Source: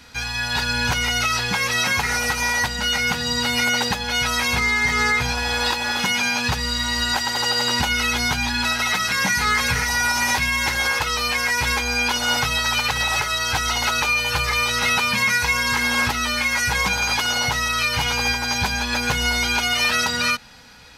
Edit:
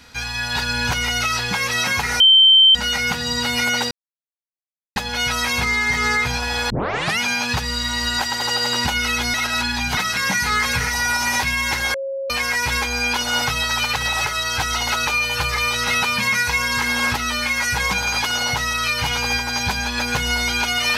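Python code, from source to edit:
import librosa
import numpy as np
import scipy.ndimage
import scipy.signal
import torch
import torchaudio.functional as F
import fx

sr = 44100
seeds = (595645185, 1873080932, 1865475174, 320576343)

y = fx.edit(x, sr, fx.bleep(start_s=2.2, length_s=0.55, hz=3110.0, db=-7.5),
    fx.insert_silence(at_s=3.91, length_s=1.05),
    fx.tape_start(start_s=5.65, length_s=0.49),
    fx.reverse_span(start_s=8.29, length_s=0.63),
    fx.bleep(start_s=10.89, length_s=0.36, hz=543.0, db=-23.0), tone=tone)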